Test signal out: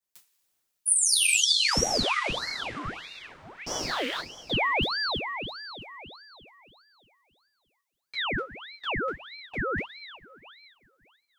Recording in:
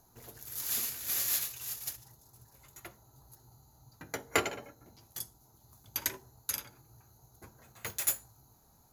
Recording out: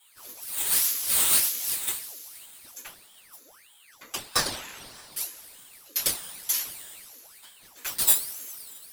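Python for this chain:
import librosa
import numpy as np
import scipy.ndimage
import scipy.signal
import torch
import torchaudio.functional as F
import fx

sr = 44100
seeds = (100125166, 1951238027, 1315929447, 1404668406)

y = fx.rattle_buzz(x, sr, strikes_db=-38.0, level_db=-26.0)
y = fx.tone_stack(y, sr, knobs='10-0-10')
y = fx.rev_double_slope(y, sr, seeds[0], early_s=0.23, late_s=3.0, knee_db=-21, drr_db=-9.0)
y = fx.ring_lfo(y, sr, carrier_hz=1800.0, swing_pct=80, hz=1.6)
y = F.gain(torch.from_numpy(y), 4.0).numpy()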